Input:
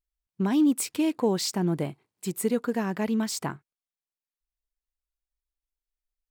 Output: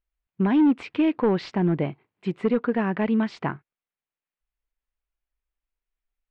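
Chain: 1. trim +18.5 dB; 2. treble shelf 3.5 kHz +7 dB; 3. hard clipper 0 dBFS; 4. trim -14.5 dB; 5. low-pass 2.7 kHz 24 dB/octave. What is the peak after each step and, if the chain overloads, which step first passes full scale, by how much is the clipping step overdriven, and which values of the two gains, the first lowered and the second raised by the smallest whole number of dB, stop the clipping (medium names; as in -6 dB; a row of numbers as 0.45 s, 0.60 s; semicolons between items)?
+5.5 dBFS, +7.5 dBFS, 0.0 dBFS, -14.5 dBFS, -14.0 dBFS; step 1, 7.5 dB; step 1 +10.5 dB, step 4 -6.5 dB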